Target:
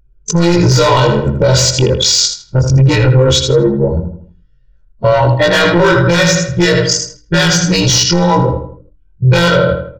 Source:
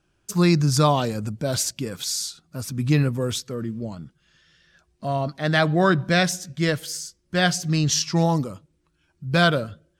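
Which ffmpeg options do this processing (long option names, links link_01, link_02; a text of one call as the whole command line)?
ffmpeg -i in.wav -filter_complex "[0:a]afftfilt=real='re':imag='-im':win_size=2048:overlap=0.75,lowshelf=frequency=94:gain=5.5,anlmdn=10,asplit=2[link_01][link_02];[link_02]acompressor=threshold=-32dB:ratio=10,volume=1.5dB[link_03];[link_01][link_03]amix=inputs=2:normalize=0,asplit=2[link_04][link_05];[link_05]adelay=80,lowpass=frequency=2800:poles=1,volume=-7.5dB,asplit=2[link_06][link_07];[link_07]adelay=80,lowpass=frequency=2800:poles=1,volume=0.42,asplit=2[link_08][link_09];[link_09]adelay=80,lowpass=frequency=2800:poles=1,volume=0.42,asplit=2[link_10][link_11];[link_11]adelay=80,lowpass=frequency=2800:poles=1,volume=0.42,asplit=2[link_12][link_13];[link_13]adelay=80,lowpass=frequency=2800:poles=1,volume=0.42[link_14];[link_04][link_06][link_08][link_10][link_12][link_14]amix=inputs=6:normalize=0,aresample=16000,asoftclip=type=tanh:threshold=-19dB,aresample=44100,highshelf=frequency=4200:gain=7,asoftclip=type=hard:threshold=-19.5dB,bandreject=frequency=60:width_type=h:width=6,bandreject=frequency=120:width_type=h:width=6,bandreject=frequency=180:width_type=h:width=6,bandreject=frequency=240:width_type=h:width=6,bandreject=frequency=300:width_type=h:width=6,aecho=1:1:2.1:0.82,acrossover=split=5200[link_15][link_16];[link_16]acompressor=threshold=-36dB:ratio=4:attack=1:release=60[link_17];[link_15][link_17]amix=inputs=2:normalize=0,alimiter=level_in=20dB:limit=-1dB:release=50:level=0:latency=1,volume=-1dB" out.wav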